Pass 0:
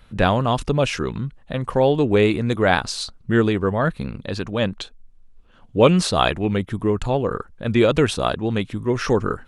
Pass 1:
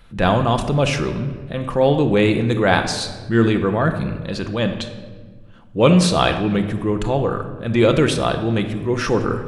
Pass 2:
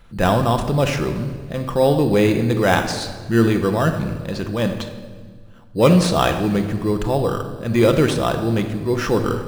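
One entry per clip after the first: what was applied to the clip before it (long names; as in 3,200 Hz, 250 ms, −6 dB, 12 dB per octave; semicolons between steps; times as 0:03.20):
rectangular room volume 1,400 cubic metres, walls mixed, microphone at 0.78 metres; transient designer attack −4 dB, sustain +1 dB; level +1.5 dB
in parallel at −6 dB: decimation without filtering 10×; on the sum: dense smooth reverb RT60 1.9 s, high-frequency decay 0.95×, DRR 15.5 dB; level −3.5 dB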